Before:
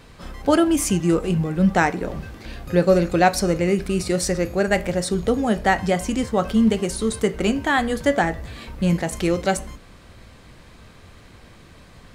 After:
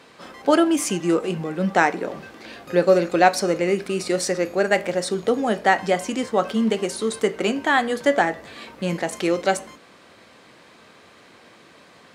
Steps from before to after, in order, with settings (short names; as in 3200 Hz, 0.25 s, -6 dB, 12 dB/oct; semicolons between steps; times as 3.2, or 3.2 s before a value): HPF 290 Hz 12 dB/oct; high shelf 10000 Hz -9.5 dB; gain +1.5 dB